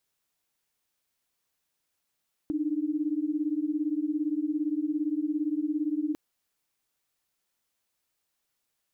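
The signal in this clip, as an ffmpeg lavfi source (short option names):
-f lavfi -i "aevalsrc='0.0355*(sin(2*PI*293.66*t)+sin(2*PI*311.13*t))':d=3.65:s=44100"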